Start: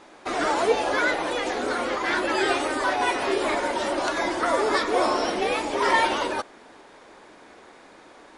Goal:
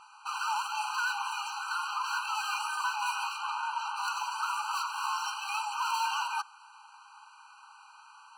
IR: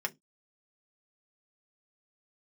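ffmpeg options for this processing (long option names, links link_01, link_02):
-filter_complex "[0:a]asoftclip=type=hard:threshold=-26dB,asplit=3[link_01][link_02][link_03];[link_01]afade=type=out:start_time=3.37:duration=0.02[link_04];[link_02]aemphasis=mode=reproduction:type=50fm,afade=type=in:start_time=3.37:duration=0.02,afade=type=out:start_time=3.95:duration=0.02[link_05];[link_03]afade=type=in:start_time=3.95:duration=0.02[link_06];[link_04][link_05][link_06]amix=inputs=3:normalize=0,afftfilt=real='re*eq(mod(floor(b*sr/1024/790),2),1)':imag='im*eq(mod(floor(b*sr/1024/790),2),1)':win_size=1024:overlap=0.75"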